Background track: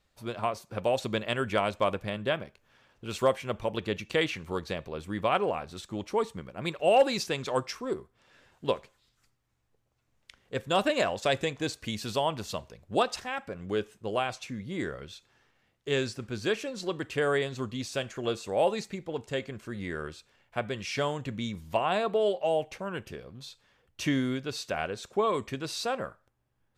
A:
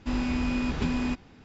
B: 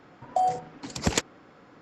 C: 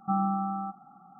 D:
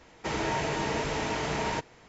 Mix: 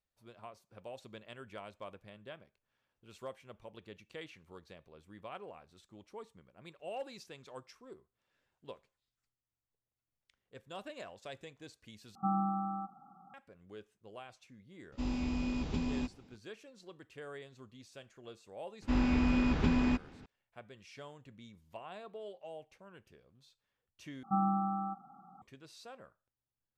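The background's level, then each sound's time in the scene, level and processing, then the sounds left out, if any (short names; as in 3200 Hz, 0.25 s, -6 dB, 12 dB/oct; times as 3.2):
background track -20 dB
12.15 replace with C -5 dB
14.92 add A -7 dB + bell 1600 Hz -8.5 dB 0.97 oct
18.82 add A -1 dB + high shelf 4400 Hz -8.5 dB
24.23 replace with C -3.5 dB
not used: B, D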